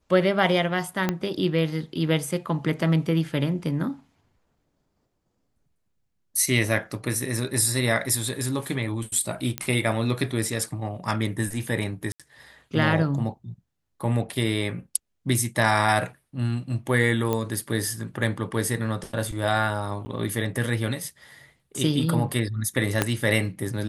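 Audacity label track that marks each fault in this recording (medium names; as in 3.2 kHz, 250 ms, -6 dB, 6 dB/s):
1.090000	1.090000	pop -9 dBFS
9.580000	9.580000	pop -10 dBFS
12.120000	12.200000	dropout 76 ms
17.330000	17.330000	pop -12 dBFS
20.050000	20.060000	dropout 10 ms
23.020000	23.020000	pop -5 dBFS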